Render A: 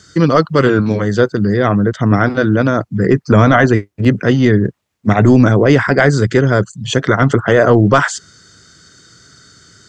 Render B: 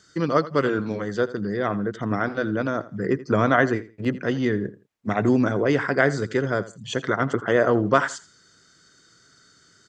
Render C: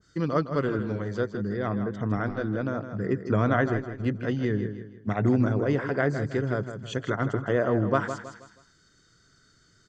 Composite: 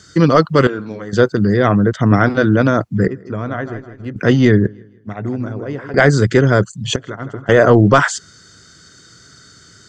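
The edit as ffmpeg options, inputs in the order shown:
-filter_complex "[2:a]asplit=3[a][b][c];[0:a]asplit=5[d][e][f][g][h];[d]atrim=end=0.672[i];[1:a]atrim=start=0.668:end=1.132[j];[e]atrim=start=1.128:end=3.082[k];[a]atrim=start=3.078:end=4.162[l];[f]atrim=start=4.158:end=4.672[m];[b]atrim=start=4.668:end=5.942[n];[g]atrim=start=5.938:end=6.962[o];[c]atrim=start=6.958:end=7.492[p];[h]atrim=start=7.488[q];[i][j]acrossfade=d=0.004:c1=hsin:c2=hsin[r];[r][k]acrossfade=d=0.004:c1=hsin:c2=hsin[s];[s][l]acrossfade=d=0.004:c1=hsin:c2=hsin[t];[t][m]acrossfade=d=0.004:c1=hsin:c2=hsin[u];[u][n]acrossfade=d=0.004:c1=hsin:c2=hsin[v];[v][o]acrossfade=d=0.004:c1=hsin:c2=hsin[w];[w][p]acrossfade=d=0.004:c1=hsin:c2=hsin[x];[x][q]acrossfade=d=0.004:c1=hsin:c2=hsin"

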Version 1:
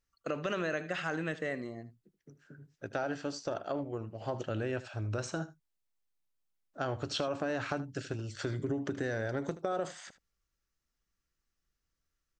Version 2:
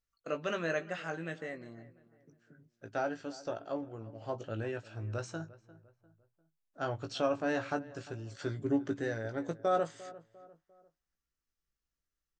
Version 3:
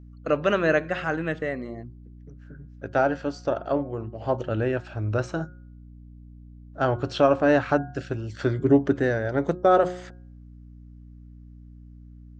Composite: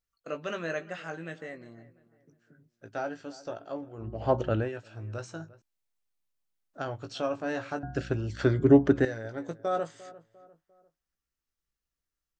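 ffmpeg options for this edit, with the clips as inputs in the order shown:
-filter_complex "[2:a]asplit=2[a][b];[1:a]asplit=4[c][d][e][f];[c]atrim=end=4.12[g];[a]atrim=start=3.96:end=4.7[h];[d]atrim=start=4.54:end=5.622[i];[0:a]atrim=start=5.618:end=6.882[j];[e]atrim=start=6.878:end=7.832[k];[b]atrim=start=7.828:end=9.052[l];[f]atrim=start=9.048[m];[g][h]acrossfade=d=0.16:c1=tri:c2=tri[n];[n][i]acrossfade=d=0.16:c1=tri:c2=tri[o];[o][j]acrossfade=d=0.004:c1=hsin:c2=hsin[p];[p][k]acrossfade=d=0.004:c1=hsin:c2=hsin[q];[q][l]acrossfade=d=0.004:c1=hsin:c2=hsin[r];[r][m]acrossfade=d=0.004:c1=hsin:c2=hsin"

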